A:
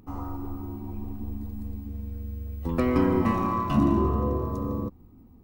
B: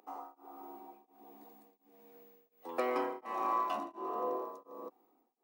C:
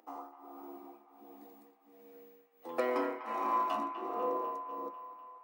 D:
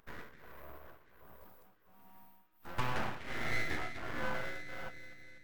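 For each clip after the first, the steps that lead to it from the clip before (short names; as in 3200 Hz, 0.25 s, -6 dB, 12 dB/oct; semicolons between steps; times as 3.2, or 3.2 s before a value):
HPF 400 Hz 24 dB/oct; bell 760 Hz +8.5 dB 0.38 oct; beating tremolo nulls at 1.4 Hz; gain -4.5 dB
band-limited delay 0.248 s, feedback 63%, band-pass 1600 Hz, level -9 dB; on a send at -6 dB: reverb RT60 0.30 s, pre-delay 3 ms
full-wave rectifier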